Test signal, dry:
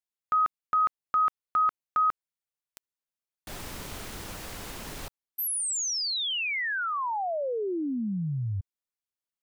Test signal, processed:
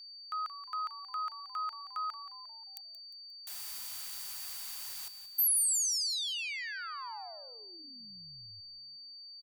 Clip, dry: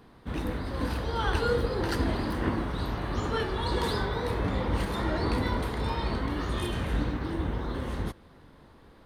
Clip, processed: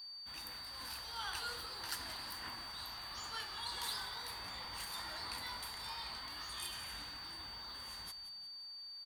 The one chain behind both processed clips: pre-emphasis filter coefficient 0.9; frequency-shifting echo 177 ms, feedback 47%, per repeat -120 Hz, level -12.5 dB; whistle 4.6 kHz -47 dBFS; resonant low shelf 610 Hz -9 dB, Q 1.5

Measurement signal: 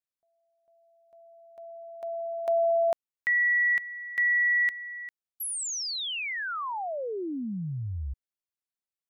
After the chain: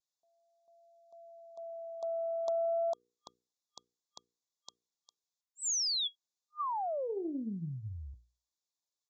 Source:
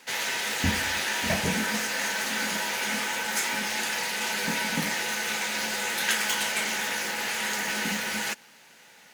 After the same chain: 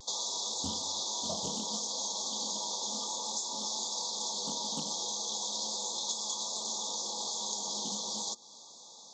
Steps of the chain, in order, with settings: FFT band-reject 1.2–3.3 kHz; high-pass 230 Hz 6 dB/octave; treble shelf 3.7 kHz +11 dB; hum notches 60/120/180/240/300/360/420/480 Hz; compression 3:1, threshold -33 dBFS; vibrato 0.35 Hz 17 cents; resampled via 16 kHz; loudspeaker Doppler distortion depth 0.15 ms

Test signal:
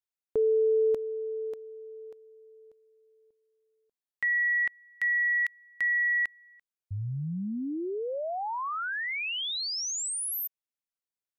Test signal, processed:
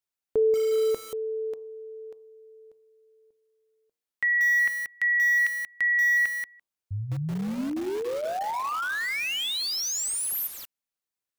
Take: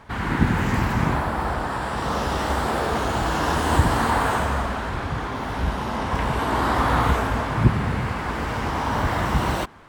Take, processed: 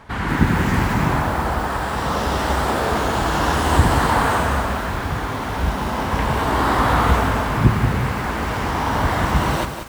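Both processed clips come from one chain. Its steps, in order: de-hum 116.6 Hz, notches 10; bit-crushed delay 183 ms, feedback 35%, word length 6-bit, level -7 dB; trim +3 dB

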